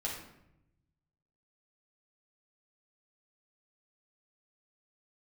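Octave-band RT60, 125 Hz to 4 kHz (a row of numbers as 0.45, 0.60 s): 1.7, 1.2, 0.90, 0.75, 0.70, 0.55 s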